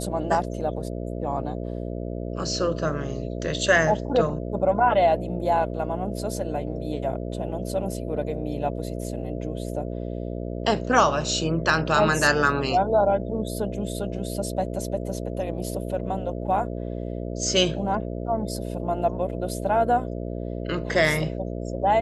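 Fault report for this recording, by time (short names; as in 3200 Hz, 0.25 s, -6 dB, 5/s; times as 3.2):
buzz 60 Hz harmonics 11 -31 dBFS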